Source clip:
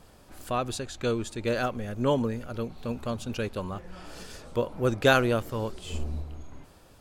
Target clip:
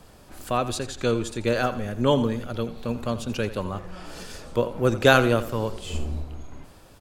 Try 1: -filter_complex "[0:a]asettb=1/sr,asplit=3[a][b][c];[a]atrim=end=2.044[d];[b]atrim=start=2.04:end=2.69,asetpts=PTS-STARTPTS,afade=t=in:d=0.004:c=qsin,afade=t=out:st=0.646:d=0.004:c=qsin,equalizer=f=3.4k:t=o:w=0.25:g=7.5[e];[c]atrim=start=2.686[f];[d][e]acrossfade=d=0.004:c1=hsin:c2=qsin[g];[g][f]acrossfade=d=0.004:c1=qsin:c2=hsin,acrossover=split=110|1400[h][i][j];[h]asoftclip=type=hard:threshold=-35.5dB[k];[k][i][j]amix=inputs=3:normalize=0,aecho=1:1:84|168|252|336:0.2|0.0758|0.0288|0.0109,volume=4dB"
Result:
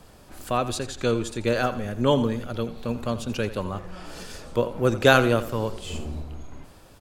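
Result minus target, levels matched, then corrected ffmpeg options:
hard clip: distortion +18 dB
-filter_complex "[0:a]asettb=1/sr,asplit=3[a][b][c];[a]atrim=end=2.044[d];[b]atrim=start=2.04:end=2.69,asetpts=PTS-STARTPTS,afade=t=in:d=0.004:c=qsin,afade=t=out:st=0.646:d=0.004:c=qsin,equalizer=f=3.4k:t=o:w=0.25:g=7.5[e];[c]atrim=start=2.686[f];[d][e]acrossfade=d=0.004:c1=hsin:c2=qsin[g];[g][f]acrossfade=d=0.004:c1=qsin:c2=hsin,acrossover=split=110|1400[h][i][j];[h]asoftclip=type=hard:threshold=-25dB[k];[k][i][j]amix=inputs=3:normalize=0,aecho=1:1:84|168|252|336:0.2|0.0758|0.0288|0.0109,volume=4dB"

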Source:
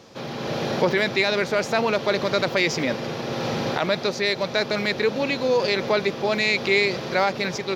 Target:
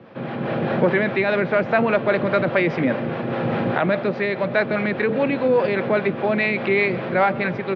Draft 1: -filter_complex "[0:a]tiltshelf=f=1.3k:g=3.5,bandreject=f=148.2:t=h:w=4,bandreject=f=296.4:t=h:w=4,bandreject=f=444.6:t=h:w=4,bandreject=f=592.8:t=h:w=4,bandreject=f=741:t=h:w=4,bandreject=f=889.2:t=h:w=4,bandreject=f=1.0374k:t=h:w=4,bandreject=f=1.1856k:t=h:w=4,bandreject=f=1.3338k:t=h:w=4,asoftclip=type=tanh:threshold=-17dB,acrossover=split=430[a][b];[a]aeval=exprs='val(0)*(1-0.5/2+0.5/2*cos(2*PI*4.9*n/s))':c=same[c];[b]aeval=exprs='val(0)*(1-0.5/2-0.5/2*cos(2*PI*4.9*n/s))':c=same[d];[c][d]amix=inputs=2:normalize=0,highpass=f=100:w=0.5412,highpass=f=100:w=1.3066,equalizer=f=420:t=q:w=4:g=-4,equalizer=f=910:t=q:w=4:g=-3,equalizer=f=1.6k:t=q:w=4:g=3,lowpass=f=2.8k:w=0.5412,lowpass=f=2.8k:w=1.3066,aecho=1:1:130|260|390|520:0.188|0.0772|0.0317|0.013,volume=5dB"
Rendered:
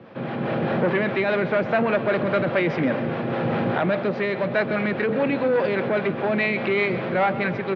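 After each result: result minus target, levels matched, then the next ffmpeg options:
soft clip: distortion +16 dB; echo-to-direct +7 dB
-filter_complex "[0:a]tiltshelf=f=1.3k:g=3.5,bandreject=f=148.2:t=h:w=4,bandreject=f=296.4:t=h:w=4,bandreject=f=444.6:t=h:w=4,bandreject=f=592.8:t=h:w=4,bandreject=f=741:t=h:w=4,bandreject=f=889.2:t=h:w=4,bandreject=f=1.0374k:t=h:w=4,bandreject=f=1.1856k:t=h:w=4,bandreject=f=1.3338k:t=h:w=4,asoftclip=type=tanh:threshold=-6dB,acrossover=split=430[a][b];[a]aeval=exprs='val(0)*(1-0.5/2+0.5/2*cos(2*PI*4.9*n/s))':c=same[c];[b]aeval=exprs='val(0)*(1-0.5/2-0.5/2*cos(2*PI*4.9*n/s))':c=same[d];[c][d]amix=inputs=2:normalize=0,highpass=f=100:w=0.5412,highpass=f=100:w=1.3066,equalizer=f=420:t=q:w=4:g=-4,equalizer=f=910:t=q:w=4:g=-3,equalizer=f=1.6k:t=q:w=4:g=3,lowpass=f=2.8k:w=0.5412,lowpass=f=2.8k:w=1.3066,aecho=1:1:130|260|390|520:0.188|0.0772|0.0317|0.013,volume=5dB"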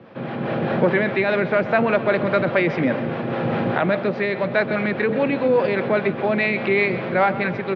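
echo-to-direct +7 dB
-filter_complex "[0:a]tiltshelf=f=1.3k:g=3.5,bandreject=f=148.2:t=h:w=4,bandreject=f=296.4:t=h:w=4,bandreject=f=444.6:t=h:w=4,bandreject=f=592.8:t=h:w=4,bandreject=f=741:t=h:w=4,bandreject=f=889.2:t=h:w=4,bandreject=f=1.0374k:t=h:w=4,bandreject=f=1.1856k:t=h:w=4,bandreject=f=1.3338k:t=h:w=4,asoftclip=type=tanh:threshold=-6dB,acrossover=split=430[a][b];[a]aeval=exprs='val(0)*(1-0.5/2+0.5/2*cos(2*PI*4.9*n/s))':c=same[c];[b]aeval=exprs='val(0)*(1-0.5/2-0.5/2*cos(2*PI*4.9*n/s))':c=same[d];[c][d]amix=inputs=2:normalize=0,highpass=f=100:w=0.5412,highpass=f=100:w=1.3066,equalizer=f=420:t=q:w=4:g=-4,equalizer=f=910:t=q:w=4:g=-3,equalizer=f=1.6k:t=q:w=4:g=3,lowpass=f=2.8k:w=0.5412,lowpass=f=2.8k:w=1.3066,aecho=1:1:130|260|390:0.0841|0.0345|0.0141,volume=5dB"

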